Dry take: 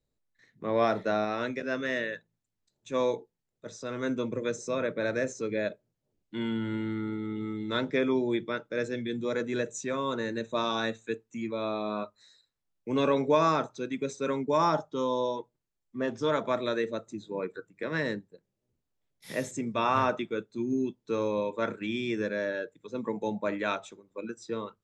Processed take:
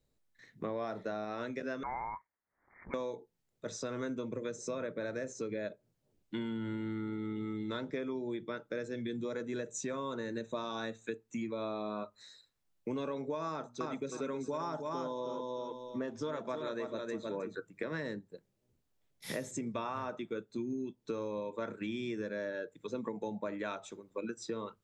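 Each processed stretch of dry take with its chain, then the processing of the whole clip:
1.83–2.94 HPF 750 Hz 24 dB/oct + inverted band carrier 2700 Hz + backwards sustainer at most 110 dB/s
13.49–17.55 notches 60/120/180/240 Hz + feedback echo 0.315 s, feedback 19%, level -6 dB
whole clip: dynamic EQ 2600 Hz, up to -4 dB, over -46 dBFS, Q 1.1; compressor 10:1, threshold -38 dBFS; gain +3.5 dB

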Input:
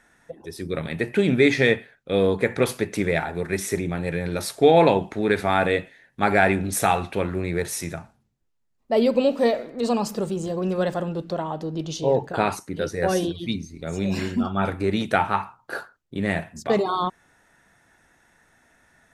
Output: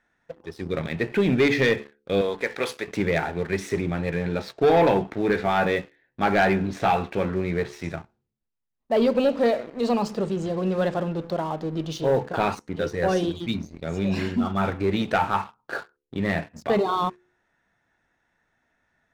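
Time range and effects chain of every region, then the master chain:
2.21–2.88 HPF 810 Hz 6 dB/oct + high shelf 8800 Hz +10.5 dB
4.1–7.84 air absorption 120 m + doubler 16 ms -10 dB
whole clip: LPF 4700 Hz 12 dB/oct; de-hum 71.98 Hz, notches 7; sample leveller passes 2; gain -7 dB

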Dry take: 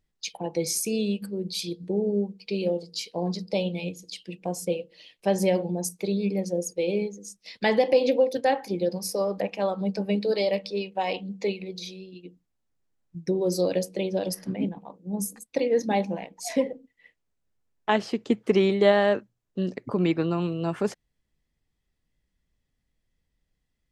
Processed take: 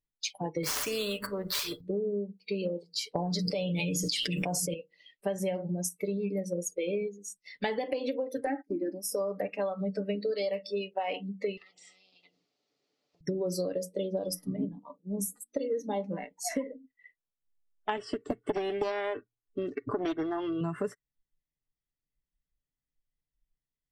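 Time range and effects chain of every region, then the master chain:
0.63–1.81 median filter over 5 samples + bell 850 Hz +13.5 dB 1.8 oct + spectral compressor 2:1
3.15–4.74 comb 6.9 ms, depth 30% + fast leveller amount 100%
8.46–9.12 gate -37 dBFS, range -27 dB + bell 310 Hz +11.5 dB 0.36 oct + fixed phaser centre 720 Hz, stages 8
11.57–13.21 compressor 2:1, threshold -49 dBFS + speaker cabinet 350–5700 Hz, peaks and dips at 420 Hz +4 dB, 970 Hz -9 dB, 1600 Hz -10 dB, 4500 Hz +6 dB + spectral compressor 10:1
13.72–16.04 band shelf 1900 Hz -9.5 dB 1.1 oct + notches 60/120/180/240/300 Hz
17.97–20.61 steep low-pass 10000 Hz 48 dB/oct + comb 2.7 ms, depth 63% + Doppler distortion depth 0.64 ms
whole clip: spectral noise reduction 17 dB; comb 6.9 ms, depth 40%; compressor 10:1, threshold -28 dBFS

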